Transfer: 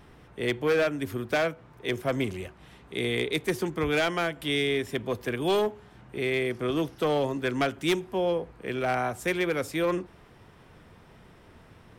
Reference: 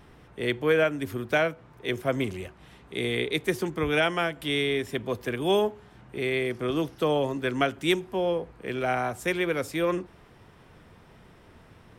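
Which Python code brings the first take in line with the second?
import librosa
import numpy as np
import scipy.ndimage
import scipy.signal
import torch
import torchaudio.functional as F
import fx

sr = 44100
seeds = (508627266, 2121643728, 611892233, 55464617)

y = fx.fix_declip(x, sr, threshold_db=-19.5)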